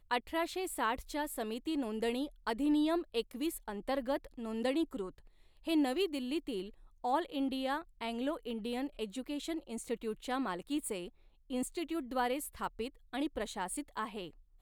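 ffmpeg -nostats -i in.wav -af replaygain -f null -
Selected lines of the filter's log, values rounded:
track_gain = +16.1 dB
track_peak = 0.075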